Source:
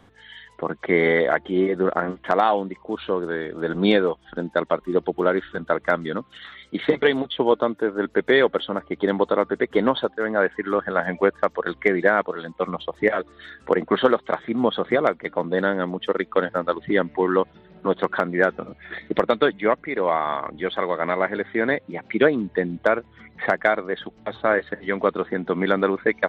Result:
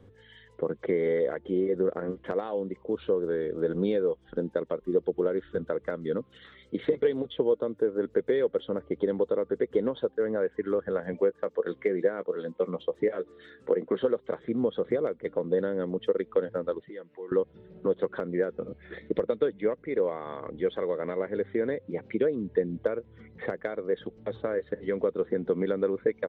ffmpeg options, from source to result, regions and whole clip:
-filter_complex "[0:a]asettb=1/sr,asplit=3[a][b][c];[a]atrim=end=11.134[d];[b]atrim=start=11.13:end=13.98,asetpts=PTS-STARTPTS,afade=t=in:d=0.004:c=qsin,afade=t=out:st=2.846:d=0.004:c=qsin,highpass=150,asplit=2[e][f];[f]adelay=16,volume=-14dB[g];[e][g]amix=inputs=2:normalize=0,atrim=end_sample=125685[h];[c]atrim=start=13.976[i];[d][h]acrossfade=d=0.004:c1=hsin:c2=qsin[j];[j][i]acrossfade=d=0.004:c1=qsin:c2=hsin,asettb=1/sr,asplit=3[k][l][m];[k]atrim=end=16.804[n];[l]atrim=start=16.8:end=17.32,asetpts=PTS-STARTPTS,afade=t=in:d=0.004:c=qsin,afade=t=out:st=0.516:d=0.004:c=qsin,highpass=f=830:p=1,aecho=1:1:6.1:0.46,atrim=end_sample=22932,acompressor=threshold=-48dB:ratio=2:attack=3.2:release=140:knee=1:detection=peak[o];[m]atrim=start=17.316[p];[n][o]acrossfade=d=0.004:c1=hsin:c2=qsin[q];[q][p]acrossfade=d=0.004:c1=qsin:c2=hsin,equalizer=f=99:t=o:w=0.59:g=7,acompressor=threshold=-23dB:ratio=4,firequalizer=gain_entry='entry(320,0);entry(480,7);entry(680,-9)':delay=0.05:min_phase=1,volume=-2.5dB"

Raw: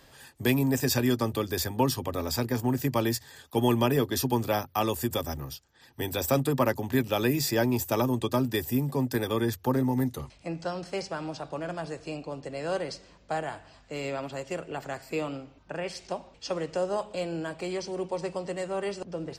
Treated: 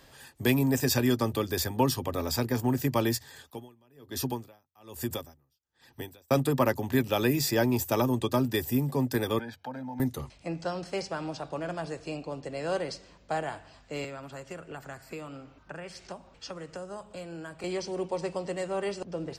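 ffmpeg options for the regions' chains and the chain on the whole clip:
-filter_complex "[0:a]asettb=1/sr,asplit=3[a][b][c];[a]atrim=end=3.424[d];[b]atrim=start=3.42:end=6.31,asetpts=PTS-STARTPTS,afade=t=in:d=0.004:c=qsin,afade=t=out:st=2.886:d=0.004:c=qsin,acompressor=threshold=-29dB:ratio=1.5:attack=3.2:release=140:knee=1:detection=peak,aeval=exprs='val(0)*pow(10,-36*(0.5-0.5*cos(2*PI*1.2*n/s))/20)':c=same[e];[c]atrim=start=6.306[f];[d][e]acrossfade=d=0.004:c1=hsin:c2=qsin[g];[g][f]acrossfade=d=0.004:c1=qsin:c2=hsin,asettb=1/sr,asplit=3[h][i][j];[h]atrim=end=9.394[k];[i]atrim=start=9.39:end=10,asetpts=PTS-STARTPTS,afade=t=in:d=0.004:c=qsin,afade=t=out:st=0.606:d=0.004:c=qsin,acrossover=split=180 4700:gain=0.0794 1 0.0891[l][m][n];[l][m][n]amix=inputs=3:normalize=0,aecho=1:1:1.3:0.9,atrim=end_sample=26901,acompressor=threshold=-43dB:ratio=2:attack=3.2:release=140:knee=1:detection=peak[o];[j]atrim=start=9.996[p];[k][o]acrossfade=d=0.004:c1=hsin:c2=qsin[q];[q][p]acrossfade=d=0.004:c1=qsin:c2=hsin,asettb=1/sr,asplit=3[r][s][t];[r]atrim=end=14.044[u];[s]atrim=start=14.04:end=17.64,asetpts=PTS-STARTPTS,afade=t=in:d=0.004:c=qsin,afade=t=out:st=3.596:d=0.004:c=qsin,equalizer=f=1.4k:w=1.7:g=7,acrossover=split=210|7500[v][w][x];[v]acompressor=threshold=-47dB:ratio=4[y];[w]acompressor=threshold=-41dB:ratio=4[z];[x]acompressor=threshold=-58dB:ratio=4[aa];[y][z][aa]amix=inputs=3:normalize=0[ab];[t]atrim=start=17.636[ac];[u][ab]acrossfade=d=0.004:c1=hsin:c2=qsin[ad];[ad][ac]acrossfade=d=0.004:c1=qsin:c2=hsin"

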